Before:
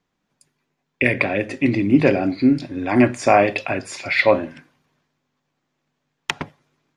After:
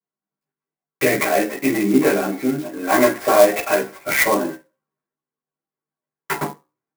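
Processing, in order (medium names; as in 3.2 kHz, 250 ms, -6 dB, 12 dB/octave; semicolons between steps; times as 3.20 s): gate -31 dBFS, range -25 dB; 1.18–3.81 s: high-pass 480 Hz 6 dB/octave; compression, threshold -17 dBFS, peak gain reduction 8 dB; chorus voices 6, 0.69 Hz, delay 14 ms, depth 1.4 ms; overdrive pedal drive 10 dB, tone 6.5 kHz, clips at -6 dBFS; reverberation RT60 0.25 s, pre-delay 3 ms, DRR -8 dB; sampling jitter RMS 0.045 ms; trim -13.5 dB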